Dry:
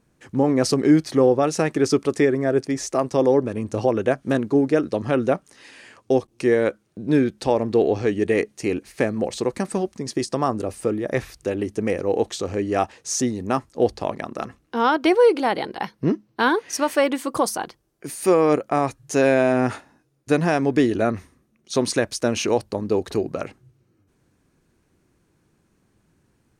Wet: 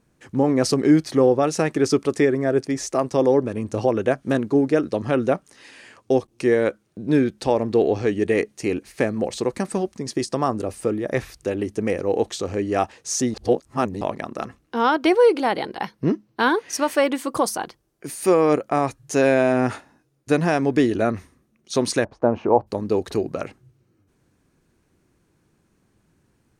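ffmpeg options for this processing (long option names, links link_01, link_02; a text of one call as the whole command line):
ffmpeg -i in.wav -filter_complex "[0:a]asplit=3[link_01][link_02][link_03];[link_01]afade=type=out:start_time=22.04:duration=0.02[link_04];[link_02]lowpass=frequency=890:width_type=q:width=2.6,afade=type=in:start_time=22.04:duration=0.02,afade=type=out:start_time=22.66:duration=0.02[link_05];[link_03]afade=type=in:start_time=22.66:duration=0.02[link_06];[link_04][link_05][link_06]amix=inputs=3:normalize=0,asplit=3[link_07][link_08][link_09];[link_07]atrim=end=13.342[link_10];[link_08]atrim=start=13.338:end=14.012,asetpts=PTS-STARTPTS,areverse[link_11];[link_09]atrim=start=14.008[link_12];[link_10][link_11]acrossfade=duration=0.004:curve1=hsin:curve2=hsin[link_13];[link_13][link_12]acrossfade=duration=0.004:curve1=hsin:curve2=hsin" out.wav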